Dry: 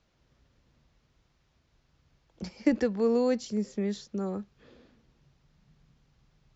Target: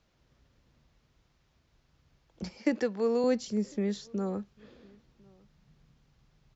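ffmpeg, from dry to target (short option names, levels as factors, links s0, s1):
-filter_complex "[0:a]asettb=1/sr,asplit=3[s0][s1][s2];[s0]atrim=end=2.584[s3];[s1]atrim=start=2.58:end=3.24,asetpts=PTS-STARTPTS,afade=t=in:d=0.004:c=qsin,afade=t=out:st=0.656:d=0.004:c=qsin,highpass=f=340:p=1[s4];[s2]atrim=start=3.236[s5];[s3][s4]acrossfade=d=0.004:c1=hsin:c2=qsin[s6];[s6][s5]acrossfade=d=0.004:c1=qsin:c2=hsin,asplit=2[s7][s8];[s8]adelay=1050,volume=0.0447,highshelf=f=4000:g=-23.6[s9];[s7][s9]amix=inputs=2:normalize=0"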